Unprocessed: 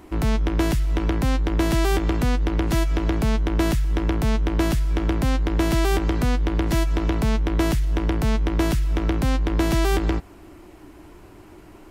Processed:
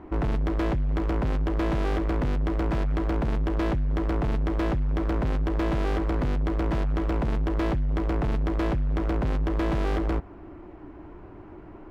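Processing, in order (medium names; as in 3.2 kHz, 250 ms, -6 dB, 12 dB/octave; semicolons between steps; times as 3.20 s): low-pass 1.5 kHz 12 dB/octave; overload inside the chain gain 24.5 dB; trim +1.5 dB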